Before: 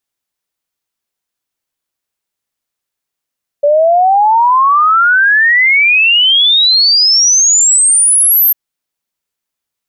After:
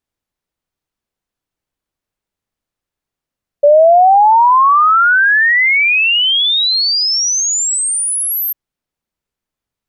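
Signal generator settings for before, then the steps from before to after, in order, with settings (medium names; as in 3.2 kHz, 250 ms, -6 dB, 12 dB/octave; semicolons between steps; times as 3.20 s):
log sweep 570 Hz -> 13 kHz 4.90 s -5.5 dBFS
tilt EQ -2.5 dB/octave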